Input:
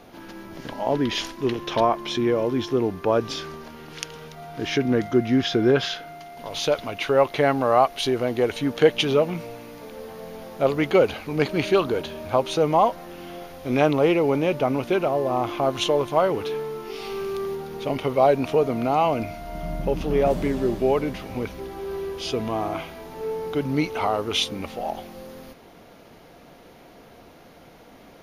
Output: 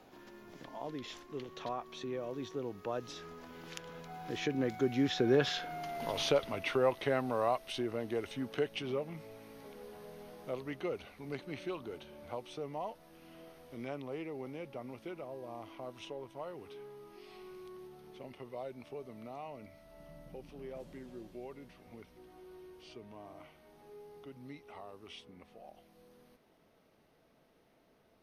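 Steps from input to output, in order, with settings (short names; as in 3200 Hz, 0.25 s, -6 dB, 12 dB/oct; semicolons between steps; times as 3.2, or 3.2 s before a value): Doppler pass-by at 5.9, 22 m/s, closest 11 m; three-band squash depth 40%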